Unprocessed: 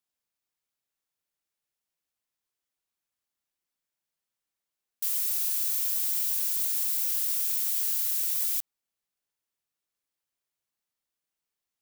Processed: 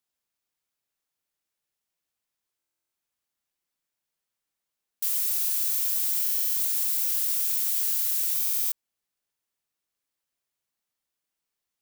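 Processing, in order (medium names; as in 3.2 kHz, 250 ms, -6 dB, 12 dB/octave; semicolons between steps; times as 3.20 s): buffer glitch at 2.58/6.21/8.37 s, samples 1024, times 14; trim +2 dB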